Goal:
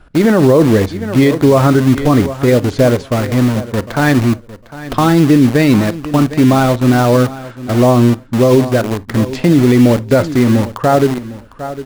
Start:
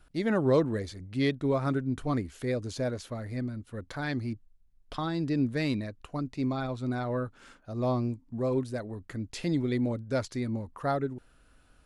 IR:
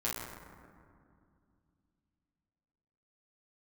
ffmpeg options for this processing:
-filter_complex "[0:a]lowpass=f=1.6k:p=1,lowshelf=f=97:g=-4,asplit=2[a][b];[b]acrusher=bits=5:mix=0:aa=0.000001,volume=-4dB[c];[a][c]amix=inputs=2:normalize=0,aecho=1:1:754|1508:0.15|0.0239,asplit=2[d][e];[1:a]atrim=start_sample=2205,atrim=end_sample=3969[f];[e][f]afir=irnorm=-1:irlink=0,volume=-18dB[g];[d][g]amix=inputs=2:normalize=0,alimiter=level_in=18.5dB:limit=-1dB:release=50:level=0:latency=1,volume=-1dB"

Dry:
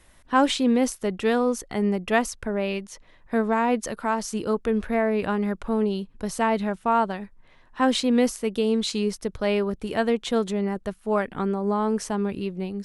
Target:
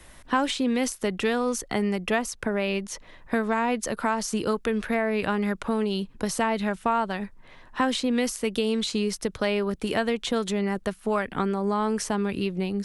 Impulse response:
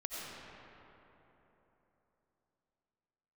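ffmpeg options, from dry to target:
-filter_complex "[0:a]acrossover=split=110|1400[a][b][c];[a]acompressor=threshold=-53dB:ratio=4[d];[b]acompressor=threshold=-32dB:ratio=4[e];[c]acompressor=threshold=-37dB:ratio=4[f];[d][e][f]amix=inputs=3:normalize=0,volume=7dB"

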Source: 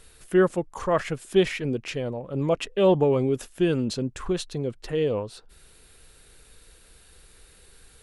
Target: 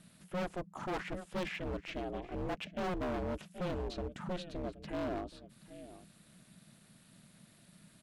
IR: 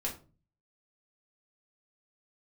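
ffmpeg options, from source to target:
-filter_complex "[0:a]aeval=exprs='val(0)*sin(2*PI*180*n/s)':c=same,acrossover=split=4100[a][b];[b]acompressor=threshold=-56dB:ratio=4:attack=1:release=60[c];[a][c]amix=inputs=2:normalize=0,asplit=2[d][e];[e]aecho=0:1:775:0.119[f];[d][f]amix=inputs=2:normalize=0,volume=27.5dB,asoftclip=hard,volume=-27.5dB,volume=-5.5dB"

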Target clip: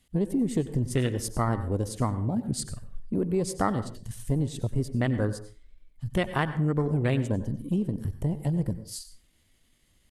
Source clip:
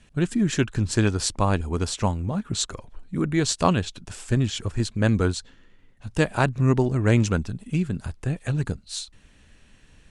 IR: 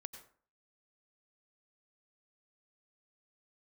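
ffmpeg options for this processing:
-filter_complex "[0:a]afwtdn=0.0398,acompressor=threshold=-28dB:ratio=3,asetrate=50951,aresample=44100,atempo=0.865537,aemphasis=mode=production:type=50kf,asplit=2[a][b];[1:a]atrim=start_sample=2205,afade=t=out:st=0.32:d=0.01,atrim=end_sample=14553[c];[b][c]afir=irnorm=-1:irlink=0,volume=8.5dB[d];[a][d]amix=inputs=2:normalize=0,volume=-5dB"

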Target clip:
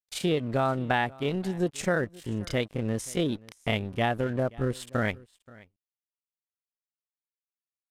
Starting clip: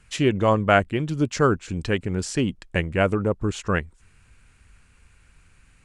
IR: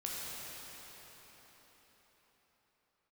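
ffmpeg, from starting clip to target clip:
-af "aeval=exprs='sgn(val(0))*max(abs(val(0))-0.00891,0)':c=same,asetrate=72056,aresample=44100,atempo=0.612027,acompressor=threshold=-20dB:ratio=6,asetrate=32634,aresample=44100,aecho=1:1:529:0.0708,volume=-2dB"

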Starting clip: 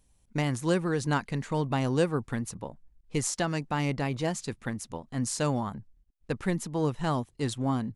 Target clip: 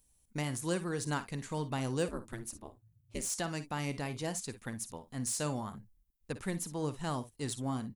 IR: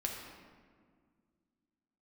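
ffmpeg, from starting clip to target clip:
-filter_complex "[0:a]aemphasis=mode=production:type=50fm,aecho=1:1:53|63:0.2|0.126,acrossover=split=2400[a][b];[b]asoftclip=type=tanh:threshold=-21.5dB[c];[a][c]amix=inputs=2:normalize=0,asettb=1/sr,asplit=3[d][e][f];[d]atrim=end=2.084[g];[e]atrim=start=2.08:end=3.3,asetpts=PTS-STARTPTS,afade=t=in:d=0.004:c=qsin,afade=t=out:st=1.216:d=0.004:c=qsin,aeval=exprs='val(0)*sin(2*PI*110*n/s)':c=same[h];[f]atrim=start=3.296[i];[g][h]acrossfade=d=0.004:c1=hsin:c2=qsin[j];[j][i]acrossfade=d=0.004:c1=qsin:c2=hsin,volume=-7.5dB"

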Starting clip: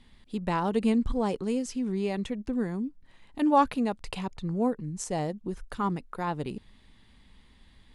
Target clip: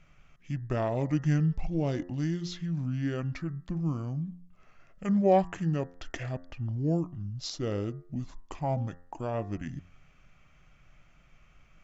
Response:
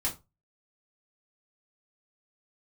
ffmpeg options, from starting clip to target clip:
-af "asetrate=29635,aresample=44100,bandreject=f=88.29:t=h:w=4,bandreject=f=176.58:t=h:w=4,bandreject=f=264.87:t=h:w=4,bandreject=f=353.16:t=h:w=4,bandreject=f=441.45:t=h:w=4,bandreject=f=529.74:t=h:w=4,bandreject=f=618.03:t=h:w=4,bandreject=f=706.32:t=h:w=4,bandreject=f=794.61:t=h:w=4,bandreject=f=882.9:t=h:w=4,bandreject=f=971.19:t=h:w=4,bandreject=f=1.05948k:t=h:w=4,bandreject=f=1.14777k:t=h:w=4,bandreject=f=1.23606k:t=h:w=4,bandreject=f=1.32435k:t=h:w=4,bandreject=f=1.41264k:t=h:w=4,bandreject=f=1.50093k:t=h:w=4,bandreject=f=1.58922k:t=h:w=4,bandreject=f=1.67751k:t=h:w=4,bandreject=f=1.7658k:t=h:w=4,bandreject=f=1.85409k:t=h:w=4,bandreject=f=1.94238k:t=h:w=4,volume=-1.5dB"

